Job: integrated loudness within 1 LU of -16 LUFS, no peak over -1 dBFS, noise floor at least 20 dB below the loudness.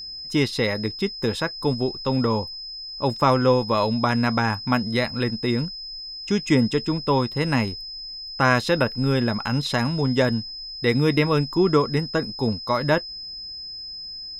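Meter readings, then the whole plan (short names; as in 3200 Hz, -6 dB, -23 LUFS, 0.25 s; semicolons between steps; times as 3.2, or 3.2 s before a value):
ticks 51/s; steady tone 5100 Hz; tone level -33 dBFS; loudness -23.0 LUFS; peak -5.0 dBFS; loudness target -16.0 LUFS
-> de-click; notch 5100 Hz, Q 30; gain +7 dB; limiter -1 dBFS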